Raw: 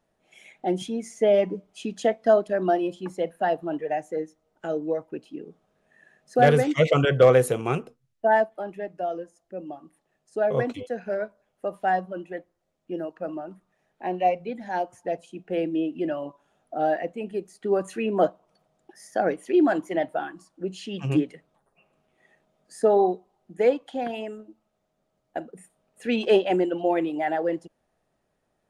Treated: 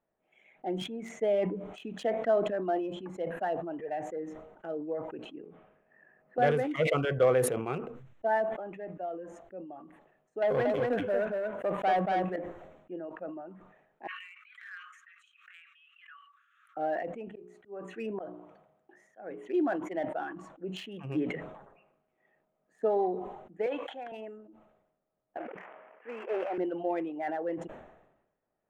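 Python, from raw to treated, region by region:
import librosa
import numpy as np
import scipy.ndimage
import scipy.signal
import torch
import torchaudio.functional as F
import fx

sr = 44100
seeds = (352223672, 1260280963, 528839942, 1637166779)

y = fx.chain(x, sr, fx.lowpass(hz=2700.0, slope=24),
    fx.band_squash(depth_pct=70), at=(5.43, 6.38))
y = fx.chain(y, sr, fx.highpass(hz=62.0, slope=12),
    fx.leveller(passes=2),
    fx.echo_single(ms=232, db=-3.0), at=(10.42, 12.36))
y = fx.chain(y, sr, fx.brickwall_highpass(low_hz=1100.0),
    fx.pre_swell(db_per_s=42.0), at=(14.07, 16.77))
y = fx.chain(y, sr, fx.hum_notches(base_hz=60, count=7),
    fx.auto_swell(attack_ms=359.0),
    fx.highpass(hz=47.0, slope=12), at=(17.28, 19.48))
y = fx.chain(y, sr, fx.highpass(hz=1400.0, slope=6),
    fx.band_squash(depth_pct=70), at=(23.66, 24.12))
y = fx.chain(y, sr, fx.cvsd(bps=16000),
    fx.bandpass_edges(low_hz=540.0, high_hz=2300.0),
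    fx.sustainer(db_per_s=33.0), at=(25.37, 26.58))
y = fx.wiener(y, sr, points=9)
y = fx.bass_treble(y, sr, bass_db=-5, treble_db=-8)
y = fx.sustainer(y, sr, db_per_s=60.0)
y = F.gain(torch.from_numpy(y), -8.0).numpy()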